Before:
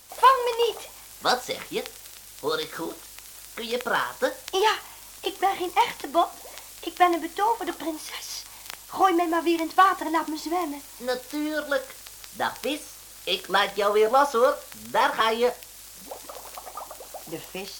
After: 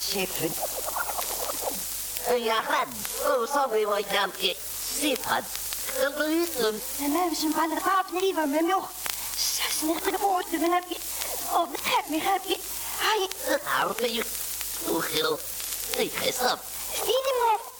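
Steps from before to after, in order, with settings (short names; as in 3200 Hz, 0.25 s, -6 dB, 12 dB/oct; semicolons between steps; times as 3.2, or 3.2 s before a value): whole clip reversed; high shelf 5900 Hz +6 dB; compressor 8:1, threshold -30 dBFS, peak gain reduction 18.5 dB; tape echo 68 ms, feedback 58%, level -18 dB; record warp 33 1/3 rpm, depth 250 cents; gain +8 dB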